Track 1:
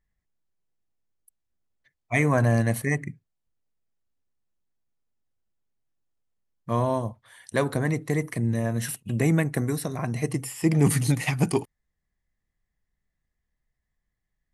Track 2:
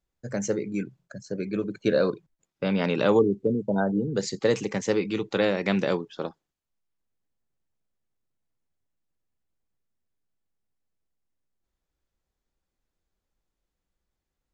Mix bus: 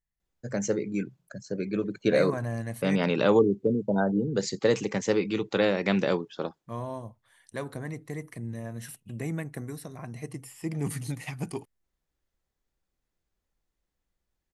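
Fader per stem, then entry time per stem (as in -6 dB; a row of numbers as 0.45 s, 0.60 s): -11.0 dB, -0.5 dB; 0.00 s, 0.20 s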